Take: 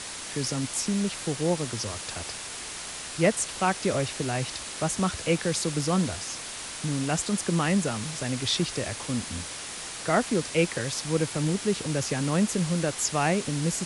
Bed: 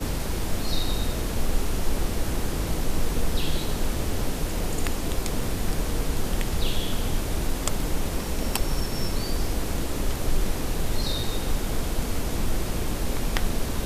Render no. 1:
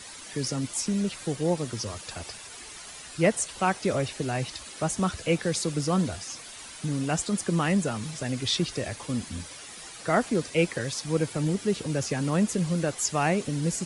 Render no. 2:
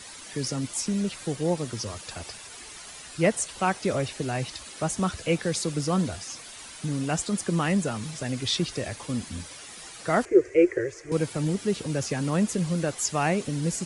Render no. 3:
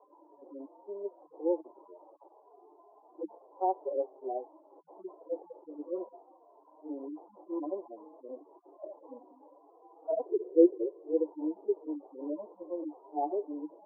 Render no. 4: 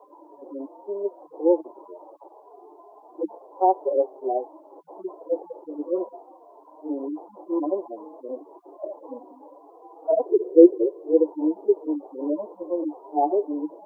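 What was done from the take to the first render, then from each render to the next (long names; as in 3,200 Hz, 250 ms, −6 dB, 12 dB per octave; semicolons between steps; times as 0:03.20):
broadband denoise 10 dB, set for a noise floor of −38 dBFS
0:10.25–0:11.12: drawn EQ curve 100 Hz 0 dB, 230 Hz −27 dB, 360 Hz +15 dB, 860 Hz −13 dB, 2,000 Hz +2 dB, 3,700 Hz −24 dB, 6,700 Hz −9 dB, 12,000 Hz −24 dB
harmonic-percussive split with one part muted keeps harmonic; Chebyshev band-pass filter 300–1,000 Hz, order 5
level +10.5 dB; brickwall limiter −2 dBFS, peak gain reduction 2 dB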